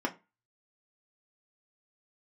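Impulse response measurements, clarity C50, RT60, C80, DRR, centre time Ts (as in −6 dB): 18.0 dB, 0.25 s, 24.0 dB, 0.5 dB, 8 ms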